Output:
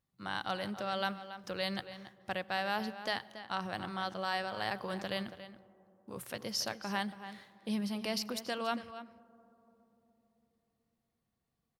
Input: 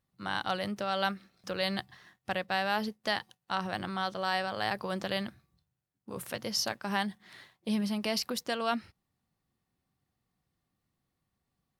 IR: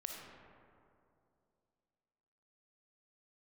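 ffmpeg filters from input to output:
-filter_complex "[0:a]asplit=2[a][b];[b]adelay=279.9,volume=-12dB,highshelf=f=4k:g=-6.3[c];[a][c]amix=inputs=2:normalize=0,asplit=2[d][e];[1:a]atrim=start_sample=2205,asetrate=26460,aresample=44100[f];[e][f]afir=irnorm=-1:irlink=0,volume=-18.5dB[g];[d][g]amix=inputs=2:normalize=0,volume=-5dB"

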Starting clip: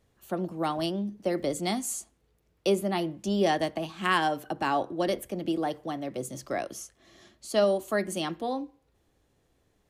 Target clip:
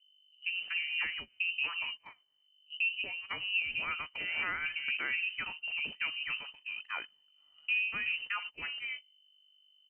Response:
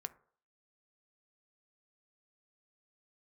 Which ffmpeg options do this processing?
-filter_complex "[0:a]acrossover=split=180|720[a][b][c];[b]adelay=140[d];[c]adelay=380[e];[a][d][e]amix=inputs=3:normalize=0,aeval=exprs='0.224*(cos(1*acos(clip(val(0)/0.224,-1,1)))-cos(1*PI/2))+0.00141*(cos(6*acos(clip(val(0)/0.224,-1,1)))-cos(6*PI/2))':c=same,aemphasis=mode=production:type=bsi,aeval=exprs='val(0)+0.00501*(sin(2*PI*50*n/s)+sin(2*PI*2*50*n/s)/2+sin(2*PI*3*50*n/s)/3+sin(2*PI*4*50*n/s)/4+sin(2*PI*5*50*n/s)/5)':c=same,alimiter=limit=-23.5dB:level=0:latency=1:release=248,lowpass=f=2.6k:t=q:w=0.5098,lowpass=f=2.6k:t=q:w=0.6013,lowpass=f=2.6k:t=q:w=0.9,lowpass=f=2.6k:t=q:w=2.563,afreqshift=-3100,agate=range=-19dB:threshold=-41dB:ratio=16:detection=peak"

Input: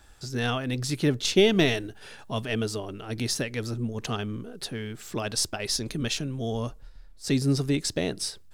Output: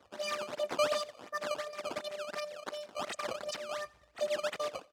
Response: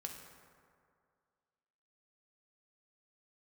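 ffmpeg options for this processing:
-filter_complex "[0:a]aecho=1:1:4.8:0.89,asplit=2[a][b];[b]acompressor=threshold=-38dB:ratio=6,volume=-0.5dB[c];[a][c]amix=inputs=2:normalize=0,afftfilt=real='hypot(re,im)*cos(PI*b)':imag='0':win_size=512:overlap=0.75,aresample=11025,asoftclip=type=hard:threshold=-18dB,aresample=44100,acrusher=samples=24:mix=1:aa=0.000001:lfo=1:lforange=38.4:lforate=1.6,highpass=120,lowpass=4k,aecho=1:1:149|298|447:0.0708|0.0311|0.0137,asetrate=76440,aresample=44100,volume=-6dB"

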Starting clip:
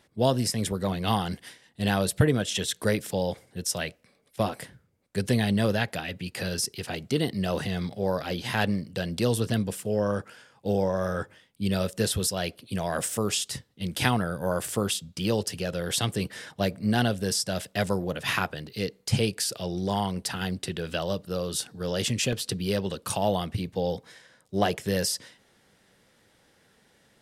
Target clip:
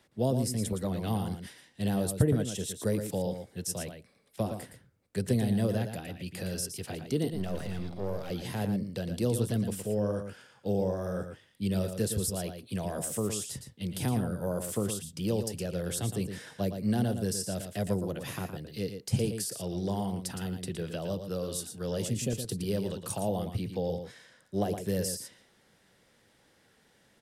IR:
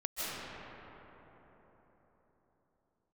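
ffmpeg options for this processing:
-filter_complex "[0:a]asettb=1/sr,asplit=3[a][b][c];[a]atrim=end=7.314[d];[b]atrim=start=7.31:end=8.3,asetpts=PTS-STARTPTS,afade=t=in:d=0.004:c=qsin,afade=t=out:st=0.986:d=0.004:c=qsin,aeval=exprs='if(lt(val(0),0),0.251*val(0),val(0))':c=same[e];[c]atrim=start=8.296[f];[d][e]acrossfade=d=0.004:c1=hsin:c2=qsin[g];[g][f]acrossfade=d=0.004:c1=qsin:c2=hsin,acrossover=split=110|640|6700[h][i][j][k];[j]acompressor=threshold=-42dB:ratio=6[l];[h][i][l][k]amix=inputs=4:normalize=0,aecho=1:1:115:0.398,volume=-3dB"

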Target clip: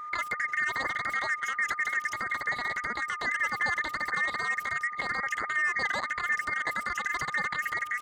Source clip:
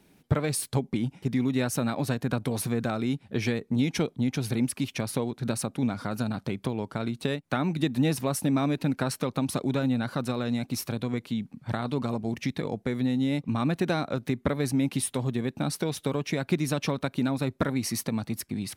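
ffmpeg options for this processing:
-filter_complex "[0:a]afftfilt=real='real(if(between(b,1,1008),(2*floor((b-1)/48)+1)*48-b,b),0)':imag='imag(if(between(b,1,1008),(2*floor((b-1)/48)+1)*48-b,b),0)*if(between(b,1,1008),-1,1)':win_size=2048:overlap=0.75,lowpass=2.6k,lowshelf=f=370:g=5,alimiter=limit=-20dB:level=0:latency=1:release=247,aeval=exprs='val(0)+0.0158*sin(2*PI*520*n/s)':c=same,asetrate=103194,aresample=44100,asplit=2[a][b];[b]adelay=1399,volume=-22dB,highshelf=f=4k:g=-31.5[c];[a][c]amix=inputs=2:normalize=0"

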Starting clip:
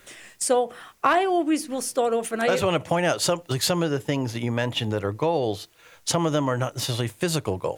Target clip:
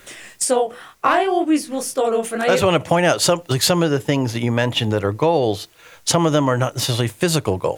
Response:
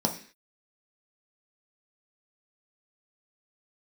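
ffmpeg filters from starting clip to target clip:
-filter_complex "[0:a]asplit=3[a][b][c];[a]afade=t=out:st=0.44:d=0.02[d];[b]flanger=delay=19:depth=7.6:speed=2,afade=t=in:st=0.44:d=0.02,afade=t=out:st=2.48:d=0.02[e];[c]afade=t=in:st=2.48:d=0.02[f];[d][e][f]amix=inputs=3:normalize=0,volume=6.5dB"

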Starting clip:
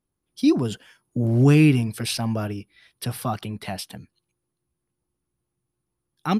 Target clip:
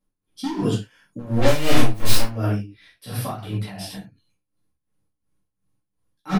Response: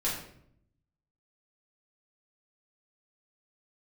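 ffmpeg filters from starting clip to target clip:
-filter_complex "[0:a]aeval=exprs='0.168*(abs(mod(val(0)/0.168+3,4)-2)-1)':c=same,aresample=32000,aresample=44100,asplit=3[a][b][c];[a]afade=t=out:st=1.41:d=0.02[d];[b]aeval=exprs='0.178*(cos(1*acos(clip(val(0)/0.178,-1,1)))-cos(1*PI/2))+0.0178*(cos(7*acos(clip(val(0)/0.178,-1,1)))-cos(7*PI/2))+0.0562*(cos(8*acos(clip(val(0)/0.178,-1,1)))-cos(8*PI/2))':c=same,afade=t=in:st=1.41:d=0.02,afade=t=out:st=2.23:d=0.02[e];[c]afade=t=in:st=2.23:d=0.02[f];[d][e][f]amix=inputs=3:normalize=0[g];[1:a]atrim=start_sample=2205,afade=t=out:st=0.19:d=0.01,atrim=end_sample=8820[h];[g][h]afir=irnorm=-1:irlink=0,tremolo=f=2.8:d=0.78,volume=-2.5dB"

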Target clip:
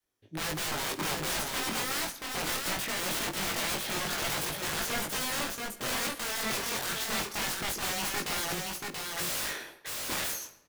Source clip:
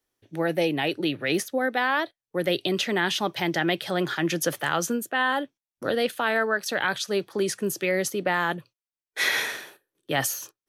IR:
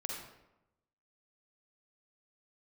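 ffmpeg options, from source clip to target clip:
-filter_complex "[0:a]adynamicequalizer=threshold=0.0112:dfrequency=340:dqfactor=1:tfrequency=340:tqfactor=1:attack=5:release=100:ratio=0.375:range=1.5:mode=boostabove:tftype=bell,aeval=exprs='(mod(17.8*val(0)+1,2)-1)/17.8':c=same,flanger=delay=19:depth=3.7:speed=0.23,aecho=1:1:681:0.668,asplit=2[a][b];[1:a]atrim=start_sample=2205,adelay=51[c];[b][c]afir=irnorm=-1:irlink=0,volume=-14.5dB[d];[a][d]amix=inputs=2:normalize=0"

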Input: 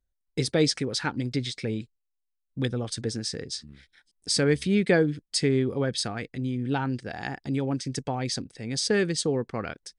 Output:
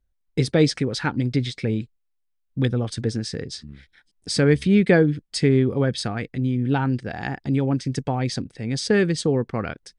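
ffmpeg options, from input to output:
-af "bass=f=250:g=4,treble=f=4k:g=-7,volume=4dB"

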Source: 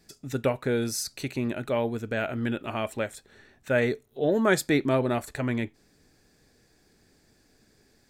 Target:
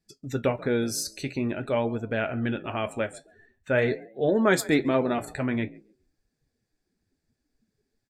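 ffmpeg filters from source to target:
-filter_complex "[0:a]asplit=4[a][b][c][d];[b]adelay=137,afreqshift=46,volume=-20dB[e];[c]adelay=274,afreqshift=92,volume=-29.6dB[f];[d]adelay=411,afreqshift=138,volume=-39.3dB[g];[a][e][f][g]amix=inputs=4:normalize=0,afftdn=nr=20:nf=-48,flanger=delay=8.4:depth=4.8:regen=-62:speed=0.47:shape=triangular,volume=5dB"

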